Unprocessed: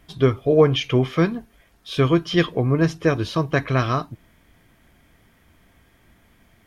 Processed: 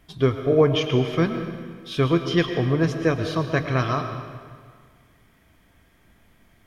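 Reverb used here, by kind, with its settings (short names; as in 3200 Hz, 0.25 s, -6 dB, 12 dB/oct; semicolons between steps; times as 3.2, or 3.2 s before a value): digital reverb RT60 1.8 s, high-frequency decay 0.85×, pre-delay 70 ms, DRR 7 dB; gain -2.5 dB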